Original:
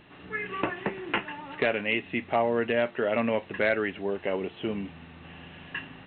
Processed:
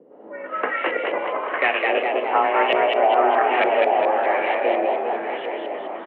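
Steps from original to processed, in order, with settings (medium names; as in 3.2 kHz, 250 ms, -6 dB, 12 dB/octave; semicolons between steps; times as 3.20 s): backward echo that repeats 200 ms, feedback 80%, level -6 dB; LFO low-pass saw up 1.1 Hz 350–2900 Hz; frequency-shifting echo 207 ms, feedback 51%, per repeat +57 Hz, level -3 dB; on a send at -14 dB: reverberation RT60 0.40 s, pre-delay 27 ms; on the sum: frequency shift +140 Hz; trim +2 dB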